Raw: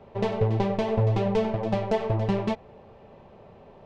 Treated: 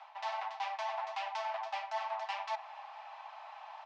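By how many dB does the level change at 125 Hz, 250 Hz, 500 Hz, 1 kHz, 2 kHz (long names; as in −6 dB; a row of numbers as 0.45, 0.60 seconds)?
below −40 dB, below −40 dB, −18.0 dB, −2.5 dB, −2.5 dB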